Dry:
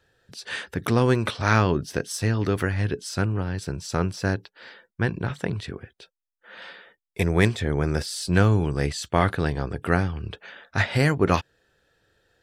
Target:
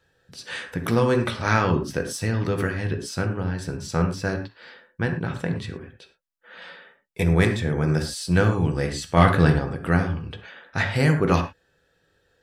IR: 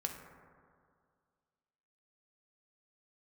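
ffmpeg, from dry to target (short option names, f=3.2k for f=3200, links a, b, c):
-filter_complex "[0:a]asettb=1/sr,asplit=3[a][b][c];[a]atrim=end=9.174[d];[b]atrim=start=9.17:end=9.59,asetpts=PTS-STARTPTS,afade=t=in:d=0.004:c=qsin,afade=t=out:st=0.416:d=0.004:c=qsin,acontrast=57[e];[c]atrim=start=9.586[f];[d][e]acrossfade=d=0.004:c1=hsin:c2=qsin[g];[g][f]acrossfade=d=0.004:c1=qsin:c2=hsin[h];[1:a]atrim=start_sample=2205,afade=t=out:st=0.17:d=0.01,atrim=end_sample=7938[i];[h][i]afir=irnorm=-1:irlink=0"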